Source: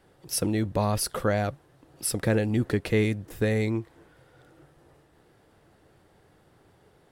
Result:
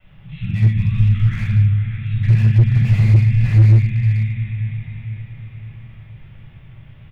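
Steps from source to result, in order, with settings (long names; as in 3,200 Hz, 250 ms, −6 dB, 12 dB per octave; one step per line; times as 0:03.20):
Chebyshev band-stop filter 140–2,300 Hz, order 3
in parallel at +2 dB: downward compressor 5 to 1, threshold −43 dBFS, peak gain reduction 16.5 dB
on the sum: bit reduction 10 bits
downsampling to 8,000 Hz
background noise violet −66 dBFS
high-frequency loss of the air 390 metres
feedback delay with all-pass diffusion 544 ms, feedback 48%, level −9 dB
rectangular room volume 510 cubic metres, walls mixed, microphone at 6.8 metres
slew-rate limiting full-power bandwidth 55 Hz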